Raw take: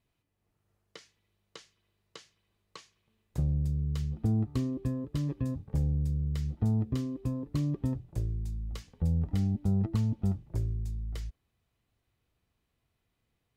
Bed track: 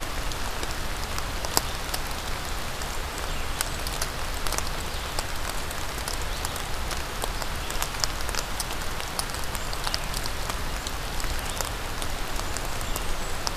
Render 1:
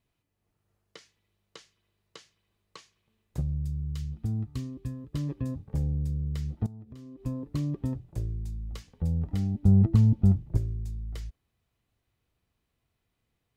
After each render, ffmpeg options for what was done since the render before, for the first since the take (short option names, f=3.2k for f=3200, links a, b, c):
-filter_complex "[0:a]asettb=1/sr,asplit=3[a][b][c];[a]atrim=end=3.414[d];[b]atrim=start=3.41:end=5.13,asetpts=PTS-STARTPTS,afade=t=in:d=0.004:c=qsin,afade=t=out:st=1.716:d=0.004:c=qsin,equalizer=f=530:t=o:w=2.6:g=-10.5[e];[c]atrim=start=5.126[f];[d][e]acrossfade=d=0.004:c1=hsin:c2=qsin[g];[g][f]acrossfade=d=0.004:c1=qsin:c2=hsin,asettb=1/sr,asplit=3[h][i][j];[h]atrim=end=6.664[k];[i]atrim=start=6.66:end=7.26,asetpts=PTS-STARTPTS,afade=t=in:d=0.004:c=qsin,afade=t=out:st=0.596:d=0.004:c=qsin,acompressor=threshold=-43dB:ratio=6:attack=3.2:release=140:knee=1:detection=peak[l];[j]atrim=start=7.256[m];[k][l]acrossfade=d=0.004:c1=hsin:c2=qsin[n];[n][m]acrossfade=d=0.004:c1=qsin:c2=hsin,asettb=1/sr,asplit=3[o][p][q];[o]atrim=end=9.634[r];[p]atrim=start=9.63:end=10.57,asetpts=PTS-STARTPTS,afade=t=in:d=0.004:c=qsin,afade=t=out:st=0.936:d=0.004:c=qsin,lowshelf=f=320:g=10[s];[q]atrim=start=10.566[t];[r][s]acrossfade=d=0.004:c1=hsin:c2=qsin[u];[u][t]acrossfade=d=0.004:c1=qsin:c2=hsin"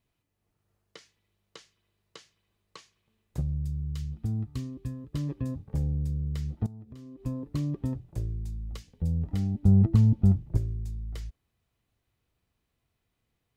-filter_complex "[0:a]asettb=1/sr,asplit=3[a][b][c];[a]atrim=end=8.774[d];[b]atrim=start=8.77:end=9.25,asetpts=PTS-STARTPTS,afade=t=in:d=0.004:c=qsin,afade=t=out:st=0.476:d=0.004:c=qsin,equalizer=f=1.1k:t=o:w=1.5:g=-8.5[e];[c]atrim=start=9.246[f];[d][e]acrossfade=d=0.004:c1=hsin:c2=qsin[g];[g][f]acrossfade=d=0.004:c1=qsin:c2=hsin"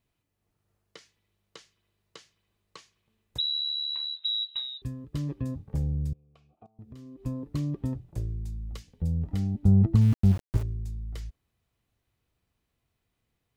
-filter_complex "[0:a]asettb=1/sr,asplit=3[a][b][c];[a]atrim=end=3.384[d];[b]atrim=start=3.38:end=4.82,asetpts=PTS-STARTPTS,afade=t=in:d=0.004:c=qsin,afade=t=out:st=1.436:d=0.004:c=qsin,lowpass=f=3.4k:t=q:w=0.5098,lowpass=f=3.4k:t=q:w=0.6013,lowpass=f=3.4k:t=q:w=0.9,lowpass=f=3.4k:t=q:w=2.563,afreqshift=-4000[e];[c]atrim=start=4.816[f];[d][e]acrossfade=d=0.004:c1=hsin:c2=qsin[g];[g][f]acrossfade=d=0.004:c1=qsin:c2=hsin,asettb=1/sr,asplit=3[h][i][j];[h]atrim=end=6.134[k];[i]atrim=start=6.13:end=6.79,asetpts=PTS-STARTPTS,afade=t=in:d=0.004:c=qsin,afade=t=out:st=0.656:d=0.004:c=qsin,asplit=3[l][m][n];[l]bandpass=f=730:t=q:w=8,volume=0dB[o];[m]bandpass=f=1.09k:t=q:w=8,volume=-6dB[p];[n]bandpass=f=2.44k:t=q:w=8,volume=-9dB[q];[o][p][q]amix=inputs=3:normalize=0[r];[j]atrim=start=6.786[s];[k][r]acrossfade=d=0.004:c1=hsin:c2=qsin[t];[t][s]acrossfade=d=0.004:c1=qsin:c2=hsin,asettb=1/sr,asplit=3[u][v][w];[u]atrim=end=10.014[x];[v]atrim=start=10.01:end=10.63,asetpts=PTS-STARTPTS,afade=t=in:d=0.004:c=qsin,afade=t=out:st=0.616:d=0.004:c=qsin,aeval=exprs='val(0)*gte(abs(val(0)),0.02)':c=same[y];[w]atrim=start=10.626[z];[x][y]acrossfade=d=0.004:c1=hsin:c2=qsin[aa];[aa][z]acrossfade=d=0.004:c1=qsin:c2=hsin"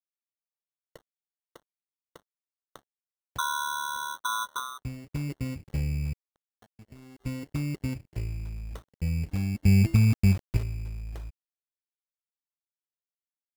-af "acrusher=samples=18:mix=1:aa=0.000001,aeval=exprs='sgn(val(0))*max(abs(val(0))-0.00266,0)':c=same"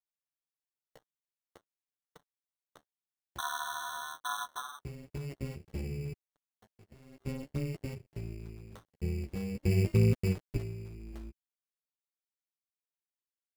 -af "flanger=delay=6.5:depth=9:regen=-2:speed=0.48:shape=sinusoidal,tremolo=f=280:d=0.824"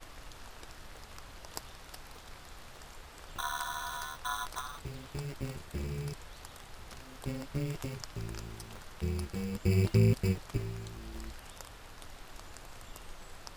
-filter_complex "[1:a]volume=-19dB[a];[0:a][a]amix=inputs=2:normalize=0"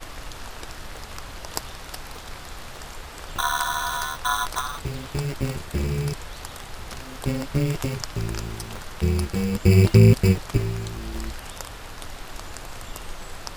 -af "volume=12dB,alimiter=limit=-2dB:level=0:latency=1"